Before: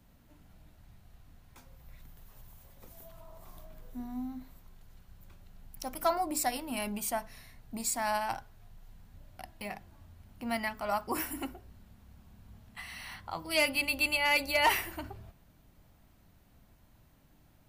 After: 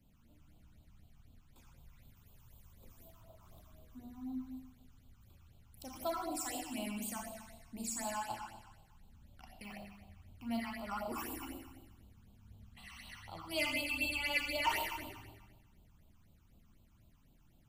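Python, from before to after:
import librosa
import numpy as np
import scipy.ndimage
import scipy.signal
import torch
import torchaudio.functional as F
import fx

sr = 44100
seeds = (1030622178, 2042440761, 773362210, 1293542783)

y = fx.rev_schroeder(x, sr, rt60_s=1.2, comb_ms=27, drr_db=-0.5)
y = fx.phaser_stages(y, sr, stages=8, low_hz=510.0, high_hz=1900.0, hz=4.0, feedback_pct=20)
y = fx.doppler_dist(y, sr, depth_ms=0.25, at=(3.08, 3.64))
y = y * librosa.db_to_amplitude(-7.0)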